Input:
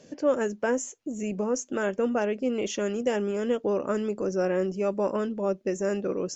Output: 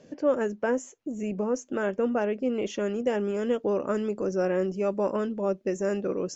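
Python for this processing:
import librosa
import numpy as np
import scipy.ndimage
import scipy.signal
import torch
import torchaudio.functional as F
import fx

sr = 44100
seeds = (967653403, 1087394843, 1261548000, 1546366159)

y = fx.high_shelf(x, sr, hz=4200.0, db=fx.steps((0.0, -11.0), (3.23, -4.0)))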